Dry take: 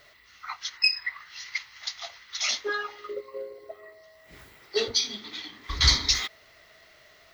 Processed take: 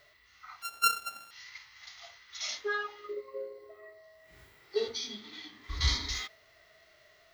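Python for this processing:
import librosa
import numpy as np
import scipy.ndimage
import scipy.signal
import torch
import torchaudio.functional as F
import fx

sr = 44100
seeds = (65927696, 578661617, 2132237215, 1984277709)

y = fx.sample_sort(x, sr, block=32, at=(0.62, 1.31))
y = fx.hpss(y, sr, part='percussive', gain_db=-17)
y = y * 10.0 ** (-2.5 / 20.0)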